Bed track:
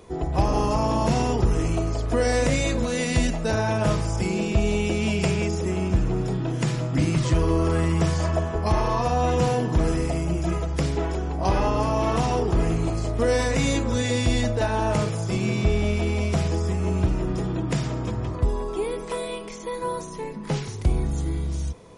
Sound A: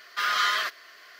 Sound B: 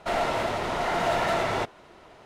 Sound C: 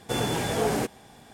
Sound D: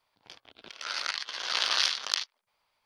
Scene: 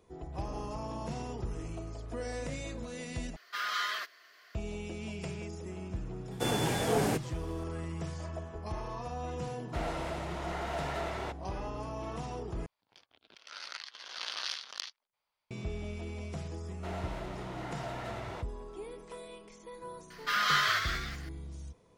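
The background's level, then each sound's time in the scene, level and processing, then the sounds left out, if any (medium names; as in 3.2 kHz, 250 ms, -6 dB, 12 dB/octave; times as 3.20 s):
bed track -16.5 dB
3.36 s: replace with A -9 dB
6.31 s: add C -3.5 dB
9.67 s: add B -11.5 dB
12.66 s: replace with D -11 dB
16.77 s: add B -16 dB
20.10 s: add A -3.5 dB + ever faster or slower copies 220 ms, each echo +1 st, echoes 2, each echo -6 dB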